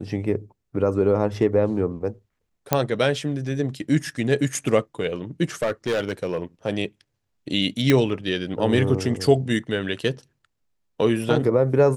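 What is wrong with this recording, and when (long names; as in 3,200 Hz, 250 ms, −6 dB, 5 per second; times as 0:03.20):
0:02.73: click −3 dBFS
0:05.62–0:06.42: clipping −18.5 dBFS
0:07.90: click −5 dBFS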